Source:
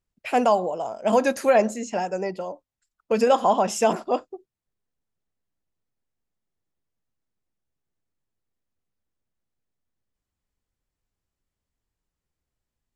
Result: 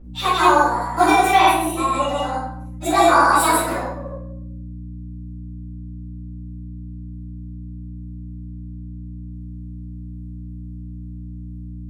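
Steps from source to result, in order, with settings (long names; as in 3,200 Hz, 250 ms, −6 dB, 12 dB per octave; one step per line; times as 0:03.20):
phase-vocoder pitch shift without resampling +5 semitones
high-shelf EQ 3,200 Hz +9 dB
wrong playback speed 44.1 kHz file played as 48 kHz
granular cloud, pitch spread up and down by 0 semitones
mains hum 60 Hz, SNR 12 dB
low-shelf EQ 78 Hz −8 dB
rectangular room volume 150 cubic metres, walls mixed, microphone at 4.4 metres
level −4 dB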